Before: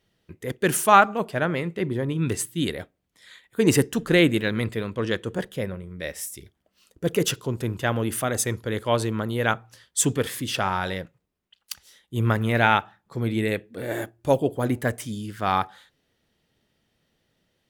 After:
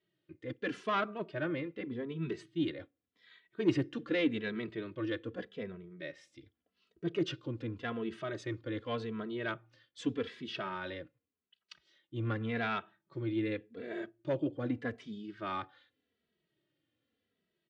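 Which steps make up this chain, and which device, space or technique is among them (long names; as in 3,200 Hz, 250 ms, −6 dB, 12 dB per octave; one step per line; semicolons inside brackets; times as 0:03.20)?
barber-pole flanger into a guitar amplifier (barber-pole flanger 2.7 ms −0.85 Hz; soft clipping −15.5 dBFS, distortion −16 dB; loudspeaker in its box 110–4,200 Hz, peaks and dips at 190 Hz −3 dB, 320 Hz +8 dB, 840 Hz −8 dB)
level −8.5 dB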